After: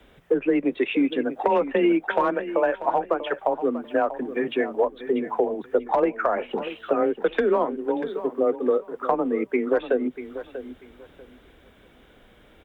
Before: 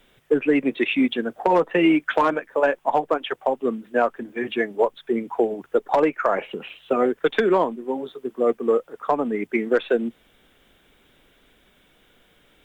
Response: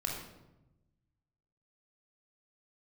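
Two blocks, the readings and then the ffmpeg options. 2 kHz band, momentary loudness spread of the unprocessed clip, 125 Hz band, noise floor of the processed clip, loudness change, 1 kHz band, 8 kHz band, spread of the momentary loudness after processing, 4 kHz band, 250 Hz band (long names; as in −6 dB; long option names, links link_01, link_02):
−4.0 dB, 8 LU, −4.5 dB, −54 dBFS, −1.5 dB, −2.0 dB, can't be measured, 6 LU, −5.5 dB, −2.0 dB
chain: -filter_complex "[0:a]highshelf=frequency=2400:gain=-11.5,acompressor=threshold=-31dB:ratio=2,afreqshift=21,asplit=2[link_01][link_02];[link_02]aecho=0:1:640|1280|1920:0.237|0.0522|0.0115[link_03];[link_01][link_03]amix=inputs=2:normalize=0,volume=6.5dB"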